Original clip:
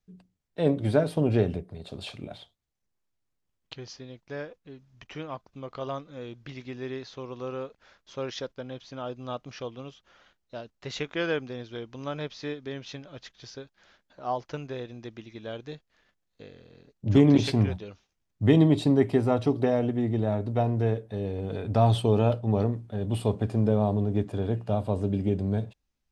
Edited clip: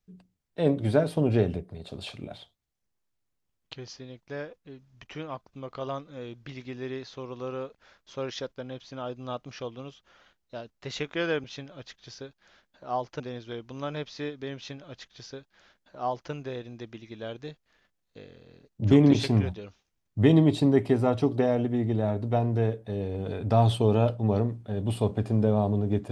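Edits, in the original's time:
0:12.80–0:14.56: duplicate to 0:11.44

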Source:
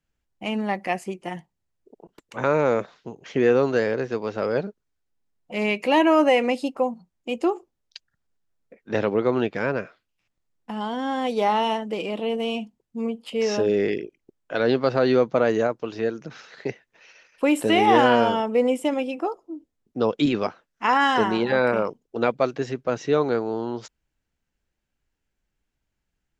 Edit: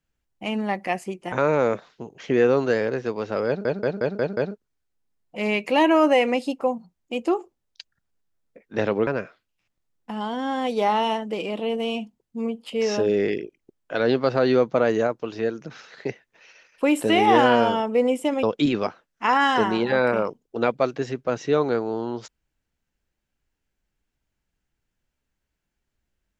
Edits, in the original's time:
0:01.32–0:02.38: remove
0:04.53: stutter 0.18 s, 6 plays
0:09.23–0:09.67: remove
0:19.03–0:20.03: remove

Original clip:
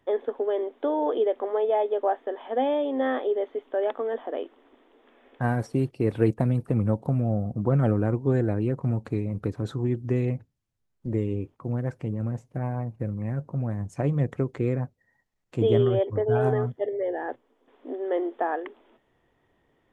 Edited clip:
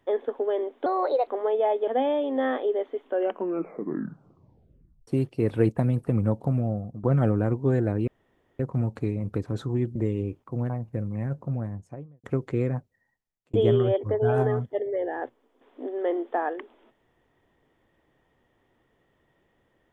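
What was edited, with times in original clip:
0:00.86–0:01.37: play speed 123%
0:01.97–0:02.49: remove
0:03.68: tape stop 2.01 s
0:07.18–0:07.65: fade out, to −12.5 dB
0:08.69: splice in room tone 0.52 s
0:10.05–0:11.08: remove
0:11.82–0:12.76: remove
0:13.45–0:14.30: fade out and dull
0:14.80–0:15.60: fade out

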